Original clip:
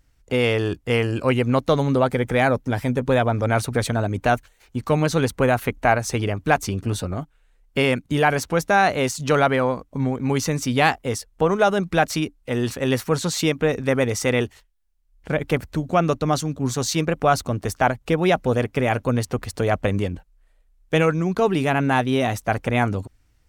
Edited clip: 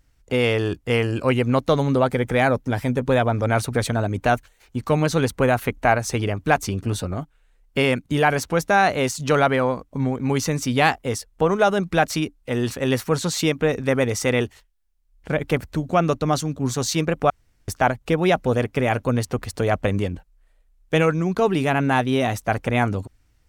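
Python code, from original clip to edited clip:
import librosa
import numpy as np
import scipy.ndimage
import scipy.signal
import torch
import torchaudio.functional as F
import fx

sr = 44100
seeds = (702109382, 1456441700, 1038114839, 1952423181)

y = fx.edit(x, sr, fx.room_tone_fill(start_s=17.3, length_s=0.38), tone=tone)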